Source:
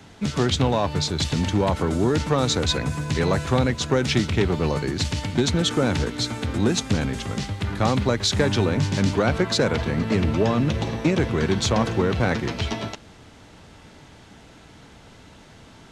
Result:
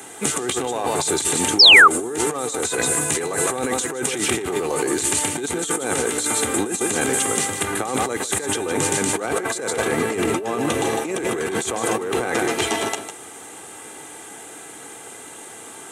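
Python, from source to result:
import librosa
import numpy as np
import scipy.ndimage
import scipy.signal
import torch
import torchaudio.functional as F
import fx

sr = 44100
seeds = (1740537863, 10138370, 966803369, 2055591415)

y = scipy.signal.sosfilt(scipy.signal.butter(2, 310.0, 'highpass', fs=sr, output='sos'), x)
y = fx.high_shelf_res(y, sr, hz=6600.0, db=11.5, q=3.0)
y = y + 0.46 * np.pad(y, (int(2.5 * sr / 1000.0), 0))[:len(y)]
y = y + 10.0 ** (-9.5 / 20.0) * np.pad(y, (int(153 * sr / 1000.0), 0))[:len(y)]
y = fx.over_compress(y, sr, threshold_db=-28.0, ratio=-1.0)
y = fx.spec_paint(y, sr, seeds[0], shape='fall', start_s=1.59, length_s=0.29, low_hz=1100.0, high_hz=5700.0, level_db=-13.0)
y = y * librosa.db_to_amplitude(5.0)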